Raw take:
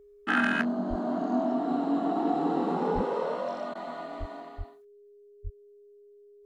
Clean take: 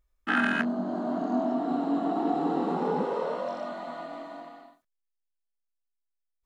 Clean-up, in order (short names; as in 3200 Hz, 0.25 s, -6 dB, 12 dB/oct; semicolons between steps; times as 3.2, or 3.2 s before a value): clip repair -14.5 dBFS; notch 410 Hz, Q 30; de-plosive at 0.89/2.94/4.19/4.57/5.43; interpolate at 3.74, 11 ms